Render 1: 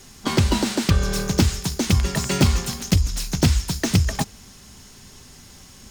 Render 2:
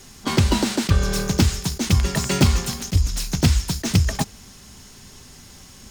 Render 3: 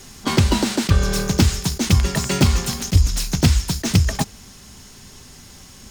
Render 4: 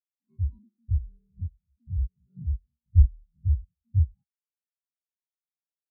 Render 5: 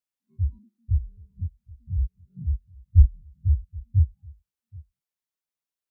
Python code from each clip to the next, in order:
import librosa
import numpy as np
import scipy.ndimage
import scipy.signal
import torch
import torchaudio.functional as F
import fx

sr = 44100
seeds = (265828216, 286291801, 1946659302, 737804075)

y1 = fx.attack_slew(x, sr, db_per_s=490.0)
y1 = y1 * 10.0 ** (1.0 / 20.0)
y2 = fx.rider(y1, sr, range_db=10, speed_s=0.5)
y2 = y2 * 10.0 ** (2.0 / 20.0)
y3 = fx.spec_steps(y2, sr, hold_ms=100)
y3 = y3 + 10.0 ** (-22.0 / 20.0) * np.pad(y3, (int(224 * sr / 1000.0), 0))[:len(y3)]
y3 = fx.spectral_expand(y3, sr, expansion=4.0)
y4 = y3 + 10.0 ** (-23.5 / 20.0) * np.pad(y3, (int(776 * sr / 1000.0), 0))[:len(y3)]
y4 = y4 * 10.0 ** (2.5 / 20.0)